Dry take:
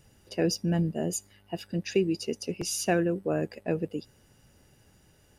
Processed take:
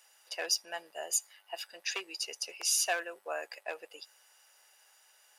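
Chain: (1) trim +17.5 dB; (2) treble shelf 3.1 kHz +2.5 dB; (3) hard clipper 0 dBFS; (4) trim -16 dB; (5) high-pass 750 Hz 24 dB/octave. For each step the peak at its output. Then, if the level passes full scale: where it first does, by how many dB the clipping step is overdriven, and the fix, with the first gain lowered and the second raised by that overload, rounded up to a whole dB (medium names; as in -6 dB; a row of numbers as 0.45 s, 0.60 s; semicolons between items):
+4.5 dBFS, +5.0 dBFS, 0.0 dBFS, -16.0 dBFS, -16.0 dBFS; step 1, 5.0 dB; step 1 +12.5 dB, step 4 -11 dB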